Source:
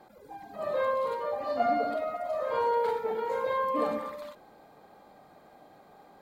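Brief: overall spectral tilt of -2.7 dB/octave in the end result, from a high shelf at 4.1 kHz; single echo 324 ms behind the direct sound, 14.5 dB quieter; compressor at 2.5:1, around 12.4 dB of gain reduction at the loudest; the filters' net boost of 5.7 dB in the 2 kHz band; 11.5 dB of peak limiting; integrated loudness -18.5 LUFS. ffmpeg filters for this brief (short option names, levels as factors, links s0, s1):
-af "equalizer=f=2000:t=o:g=8.5,highshelf=f=4100:g=-4,acompressor=threshold=0.00891:ratio=2.5,alimiter=level_in=5.31:limit=0.0631:level=0:latency=1,volume=0.188,aecho=1:1:324:0.188,volume=26.6"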